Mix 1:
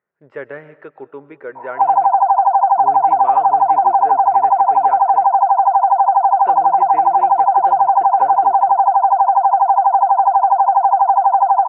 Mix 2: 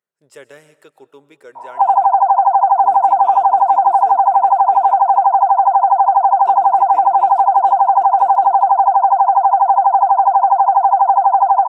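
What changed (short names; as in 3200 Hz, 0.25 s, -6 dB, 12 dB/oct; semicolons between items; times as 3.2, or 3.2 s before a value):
speech -10.0 dB; master: remove Chebyshev low-pass 1900 Hz, order 3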